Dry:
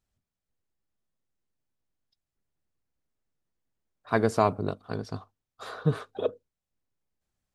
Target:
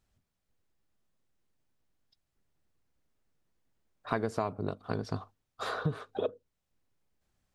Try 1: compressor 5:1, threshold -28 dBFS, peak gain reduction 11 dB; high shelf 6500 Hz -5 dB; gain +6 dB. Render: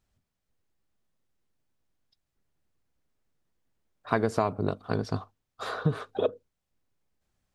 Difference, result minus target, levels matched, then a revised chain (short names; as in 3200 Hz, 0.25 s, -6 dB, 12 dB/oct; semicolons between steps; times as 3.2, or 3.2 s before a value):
compressor: peak gain reduction -6 dB
compressor 5:1, threshold -35.5 dBFS, peak gain reduction 17 dB; high shelf 6500 Hz -5 dB; gain +6 dB